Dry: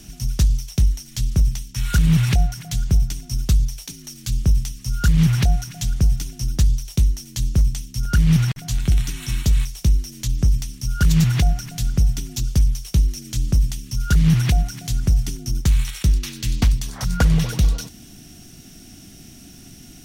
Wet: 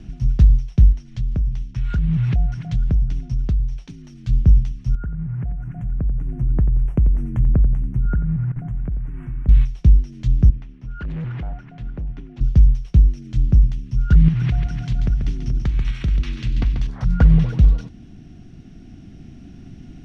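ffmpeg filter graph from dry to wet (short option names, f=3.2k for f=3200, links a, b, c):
-filter_complex "[0:a]asettb=1/sr,asplit=3[a][b][c];[a]atrim=end=0.924[d];[b]atrim=start=0.92:end=3.89,asetpts=PTS-STARTPTS,afade=t=in:d=0.004:c=qsin,afade=t=out:st=2.966:d=0.004:c=qsin,lowpass=9.4k,acompressor=threshold=-24dB:ratio=3:attack=3.2:release=140:knee=1:detection=peak[e];[c]atrim=start=3.886[f];[d][e]acrossfade=d=0.004:c1=hsin:c2=qsin[g];[g][f]acrossfade=d=0.004:c1=qsin:c2=hsin,asettb=1/sr,asplit=3[h][i][j];[h]atrim=end=4.954[k];[i]atrim=start=4.95:end=9.49,asetpts=PTS-STARTPTS,afade=t=in:d=0.004:c=qsin,afade=t=out:st=4.536:d=0.004:c=qsin,acompressor=threshold=-27dB:ratio=10:attack=3.2:release=140:knee=1:detection=peak,asuperstop=centerf=4400:order=4:qfactor=0.51,aecho=1:1:89|178|267|356:0.251|0.0955|0.0363|0.0138,atrim=end_sample=200214[l];[j]atrim=start=9.486[m];[k][l]acrossfade=d=0.004:c1=hsin:c2=qsin[n];[n][m]acrossfade=d=0.004:c1=qsin:c2=hsin,asettb=1/sr,asplit=3[o][p][q];[o]atrim=end=10.504[r];[p]atrim=start=10.5:end=12.41,asetpts=PTS-STARTPTS,afade=t=in:d=0.004:c=qsin,afade=t=out:st=1.906:d=0.004:c=qsin,acrossover=split=260 2700:gain=0.224 1 0.112[s][t][u];[s][t][u]amix=inputs=3:normalize=0,volume=28dB,asoftclip=hard,volume=-28dB[v];[q]atrim=start=12.406[w];[r][v]acrossfade=d=0.004:c1=hsin:c2=qsin[x];[x][w]acrossfade=d=0.004:c1=qsin:c2=hsin,asettb=1/sr,asplit=3[y][z][aa];[y]atrim=end=14.284[ab];[z]atrim=start=14.28:end=16.87,asetpts=PTS-STARTPTS,afade=t=in:d=0.004:c=qsin,afade=t=out:st=2.586:d=0.004:c=qsin,equalizer=f=2.8k:w=0.33:g=6.5,acompressor=threshold=-19dB:ratio=10:attack=3.2:release=140:knee=1:detection=peak,aecho=1:1:138|429:0.447|0.266,atrim=end_sample=114219[ac];[aa]atrim=start=16.866[ad];[ab][ac]acrossfade=d=0.004:c1=hsin:c2=qsin[ae];[ae][ad]acrossfade=d=0.004:c1=qsin:c2=hsin,lowpass=2.5k,lowshelf=f=360:g=10,dynaudnorm=f=280:g=11:m=11.5dB,volume=-2.5dB"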